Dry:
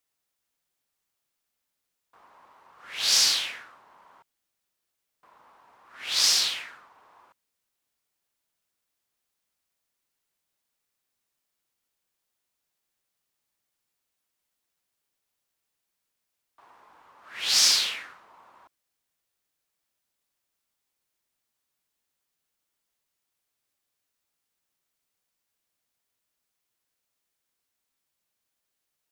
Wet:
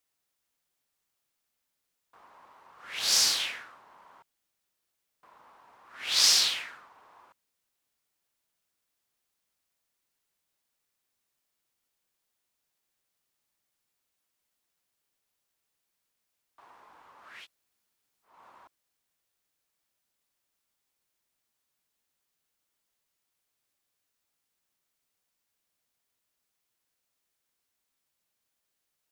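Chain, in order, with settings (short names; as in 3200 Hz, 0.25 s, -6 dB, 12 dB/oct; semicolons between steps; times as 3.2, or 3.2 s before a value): 2.99–3.4 bell 3100 Hz -5 dB 1.8 oct; 17.35–18.34 room tone, crossfade 0.24 s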